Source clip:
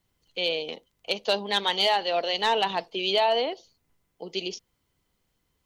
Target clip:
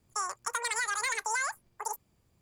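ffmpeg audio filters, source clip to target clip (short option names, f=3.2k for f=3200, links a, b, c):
-filter_complex "[0:a]acrossover=split=200|1600[a][b][c];[a]acompressor=threshold=-54dB:ratio=4[d];[b]acompressor=threshold=-31dB:ratio=4[e];[c]acompressor=threshold=-36dB:ratio=4[f];[d][e][f]amix=inputs=3:normalize=0,asetrate=103194,aresample=44100,equalizer=f=95:w=0.54:g=10"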